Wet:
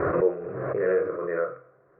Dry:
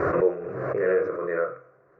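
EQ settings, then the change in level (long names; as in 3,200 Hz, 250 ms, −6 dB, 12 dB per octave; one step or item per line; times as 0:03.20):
high-frequency loss of the air 330 metres
0.0 dB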